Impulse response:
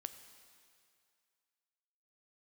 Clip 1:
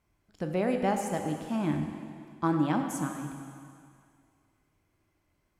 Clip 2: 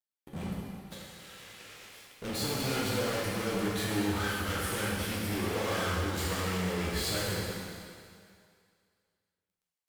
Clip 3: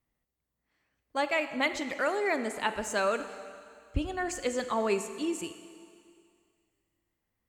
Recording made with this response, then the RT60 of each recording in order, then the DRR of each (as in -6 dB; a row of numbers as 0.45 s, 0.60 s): 3; 2.3 s, 2.3 s, 2.3 s; 3.5 dB, -6.5 dB, 9.5 dB